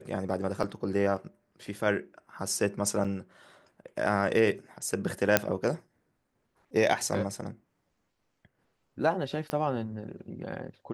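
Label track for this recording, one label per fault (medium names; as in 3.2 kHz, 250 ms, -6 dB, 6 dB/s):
0.630000	0.640000	dropout 5.3 ms
3.040000	3.050000	dropout 6.3 ms
5.370000	5.370000	pop -4 dBFS
9.500000	9.500000	pop -18 dBFS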